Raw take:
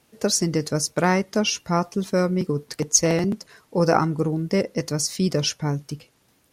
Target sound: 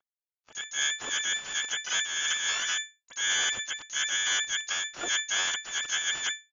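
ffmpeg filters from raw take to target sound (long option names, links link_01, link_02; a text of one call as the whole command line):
ffmpeg -i in.wav -filter_complex "[0:a]areverse,acompressor=mode=upward:threshold=-34dB:ratio=2.5,alimiter=limit=-14.5dB:level=0:latency=1:release=268,aresample=16000,acrusher=bits=3:dc=4:mix=0:aa=0.000001,aresample=44100,lowpass=frequency=3000:width_type=q:width=0.5098,lowpass=frequency=3000:width_type=q:width=0.6013,lowpass=frequency=3000:width_type=q:width=0.9,lowpass=frequency=3000:width_type=q:width=2.563,afreqshift=-3500,asplit=4[link_01][link_02][link_03][link_04];[link_02]asetrate=22050,aresample=44100,atempo=2,volume=-1dB[link_05];[link_03]asetrate=29433,aresample=44100,atempo=1.49831,volume=-8dB[link_06];[link_04]asetrate=88200,aresample=44100,atempo=0.5,volume=-1dB[link_07];[link_01][link_05][link_06][link_07]amix=inputs=4:normalize=0,agate=range=-33dB:threshold=-44dB:ratio=3:detection=peak,volume=-6dB" out.wav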